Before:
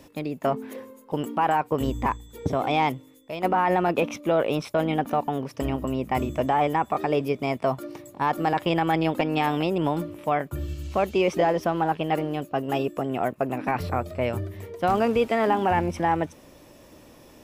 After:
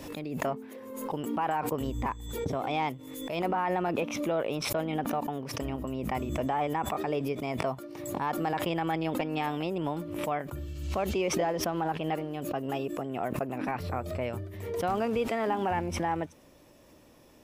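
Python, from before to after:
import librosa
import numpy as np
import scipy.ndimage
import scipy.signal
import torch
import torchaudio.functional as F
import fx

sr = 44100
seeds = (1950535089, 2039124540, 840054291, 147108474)

y = fx.pre_swell(x, sr, db_per_s=45.0)
y = F.gain(torch.from_numpy(y), -7.5).numpy()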